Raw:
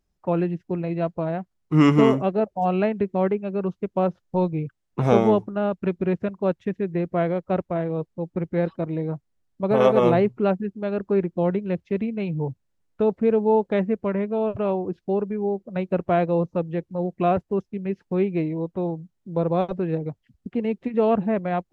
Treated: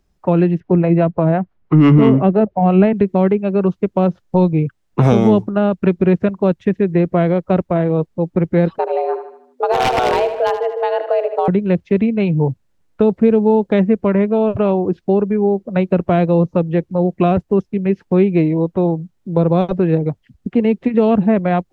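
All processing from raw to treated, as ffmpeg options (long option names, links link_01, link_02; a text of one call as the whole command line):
ffmpeg -i in.wav -filter_complex "[0:a]asettb=1/sr,asplit=3[link_01][link_02][link_03];[link_01]atrim=end=0.604[link_04];[link_02]atrim=start=0.6:end=2.93,asetpts=PTS-STARTPTS,afade=type=in:duration=0.004:curve=qsin,afade=type=out:start_time=2.326:duration=0.004:curve=qsin,lowpass=2200,acontrast=31,acrossover=split=440[link_05][link_06];[link_05]aeval=exprs='val(0)*(1-0.5/2+0.5/2*cos(2*PI*5.9*n/s))':channel_layout=same[link_07];[link_06]aeval=exprs='val(0)*(1-0.5/2-0.5/2*cos(2*PI*5.9*n/s))':channel_layout=same[link_08];[link_07][link_08]amix=inputs=2:normalize=0[link_09];[link_03]atrim=start=2.926[link_10];[link_04][link_09]acrossfade=duration=0.004:curve1=hsin:curve2=qsin[link_11];[link_11][link_10]acrossfade=duration=0.004:curve1=qsin:curve2=hsin,asettb=1/sr,asplit=3[link_12][link_13][link_14];[link_12]atrim=end=8.784[link_15];[link_13]atrim=start=8.78:end=11.48,asetpts=PTS-STARTPTS,afade=type=in:duration=0.004:curve=qsin,afade=type=out:start_time=2.696:duration=0.004:curve=qsin,afreqshift=250,aeval=exprs='0.282*(abs(mod(val(0)/0.282+3,4)-2)-1)':channel_layout=same,aecho=1:1:77|154|231|308|385:0.282|0.13|0.0596|0.0274|0.0126,atrim=end_sample=119070[link_16];[link_14]atrim=start=11.476[link_17];[link_15][link_16]acrossfade=duration=0.004:curve1=hsin:curve2=qsin[link_18];[link_18][link_17]acrossfade=duration=0.004:curve1=qsin:curve2=hsin,highshelf=frequency=5000:gain=-4.5,acrossover=split=300|3000[link_19][link_20][link_21];[link_20]acompressor=threshold=-26dB:ratio=6[link_22];[link_19][link_22][link_21]amix=inputs=3:normalize=0,alimiter=level_in=12.5dB:limit=-1dB:release=50:level=0:latency=1,volume=-1.5dB" out.wav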